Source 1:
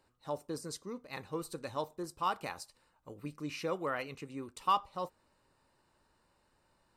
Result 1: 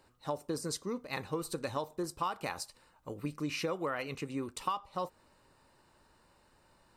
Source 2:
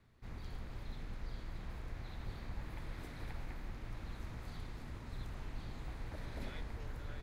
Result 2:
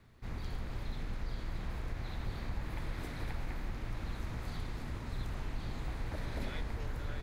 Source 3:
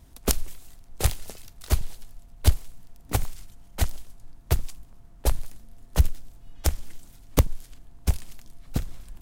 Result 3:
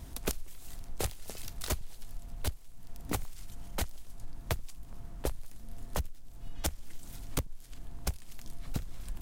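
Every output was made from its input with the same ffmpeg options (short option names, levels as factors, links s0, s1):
-af "acompressor=threshold=0.0141:ratio=12,volume=2.11"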